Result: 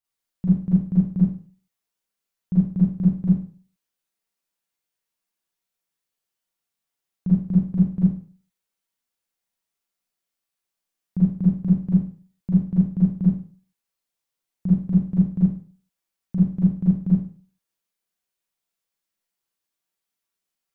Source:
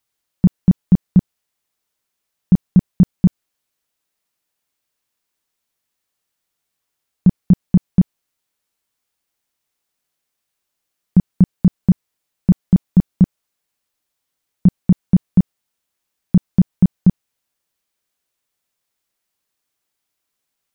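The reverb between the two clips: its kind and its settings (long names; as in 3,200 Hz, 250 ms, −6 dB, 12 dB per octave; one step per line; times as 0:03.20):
four-comb reverb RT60 0.42 s, combs from 33 ms, DRR −8.5 dB
level −16 dB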